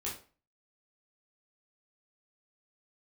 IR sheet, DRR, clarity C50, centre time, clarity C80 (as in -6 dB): -6.0 dB, 7.0 dB, 30 ms, 12.5 dB